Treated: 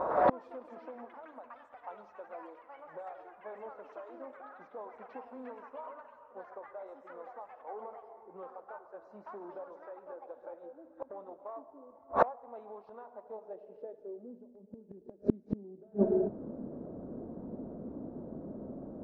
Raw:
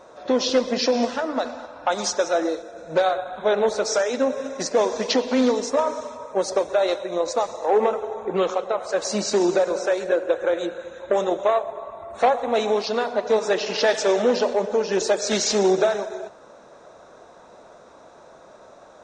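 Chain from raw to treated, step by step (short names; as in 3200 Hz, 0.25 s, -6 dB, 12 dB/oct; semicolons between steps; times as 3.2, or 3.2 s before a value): low-pass sweep 1000 Hz -> 250 Hz, 13.18–14.46; echoes that change speed 0.104 s, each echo +5 st, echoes 3, each echo -6 dB; flipped gate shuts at -22 dBFS, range -39 dB; gain +10.5 dB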